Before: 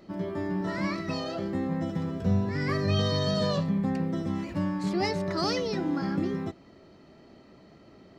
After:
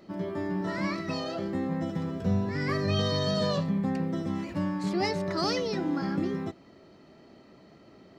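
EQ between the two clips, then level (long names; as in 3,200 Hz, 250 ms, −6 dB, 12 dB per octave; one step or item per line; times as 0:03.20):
low-shelf EQ 65 Hz −9 dB
0.0 dB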